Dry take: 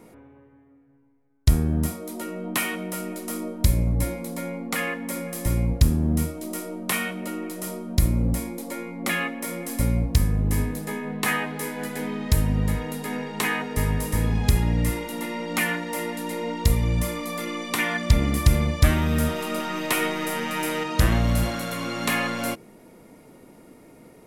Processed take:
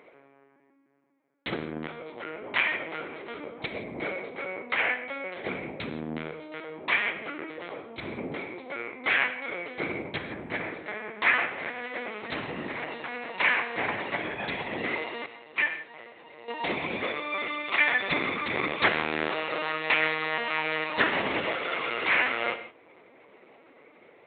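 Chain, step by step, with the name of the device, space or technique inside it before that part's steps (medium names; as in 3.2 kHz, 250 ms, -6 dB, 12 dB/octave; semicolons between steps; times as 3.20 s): 15.25–16.49 s: gate -22 dBFS, range -15 dB; talking toy (LPC vocoder at 8 kHz pitch kept; high-pass 430 Hz 12 dB/octave; peaking EQ 2.2 kHz +6.5 dB 0.53 oct); gated-style reverb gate 190 ms flat, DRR 10 dB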